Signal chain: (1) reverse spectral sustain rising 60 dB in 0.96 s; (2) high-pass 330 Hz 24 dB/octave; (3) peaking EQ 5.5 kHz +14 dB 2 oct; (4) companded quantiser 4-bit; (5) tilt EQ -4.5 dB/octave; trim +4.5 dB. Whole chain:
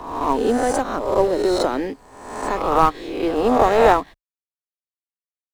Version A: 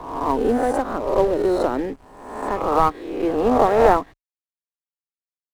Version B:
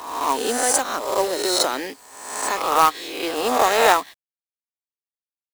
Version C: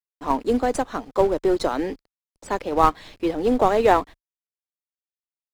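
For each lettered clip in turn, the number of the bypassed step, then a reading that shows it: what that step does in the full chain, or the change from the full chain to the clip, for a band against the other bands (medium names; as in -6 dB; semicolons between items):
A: 3, 4 kHz band -7.0 dB; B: 5, 8 kHz band +15.5 dB; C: 1, 8 kHz band -2.0 dB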